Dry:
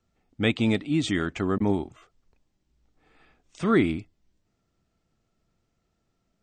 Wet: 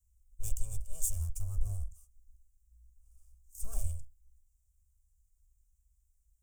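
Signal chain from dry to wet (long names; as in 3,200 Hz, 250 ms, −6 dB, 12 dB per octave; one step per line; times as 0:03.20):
lower of the sound and its delayed copy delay 1.7 ms
inverse Chebyshev band-stop filter 130–4,300 Hz, stop band 40 dB
level +10.5 dB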